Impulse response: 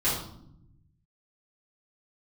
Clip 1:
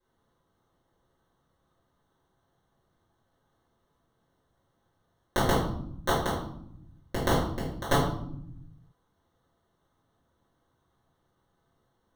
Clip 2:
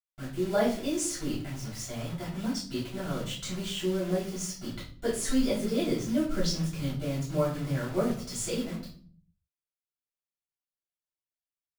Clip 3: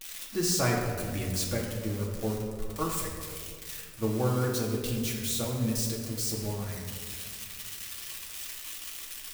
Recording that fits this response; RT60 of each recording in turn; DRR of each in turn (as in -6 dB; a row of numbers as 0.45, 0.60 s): 1; 0.70, 0.50, 2.0 s; -11.5, -10.0, -3.0 dB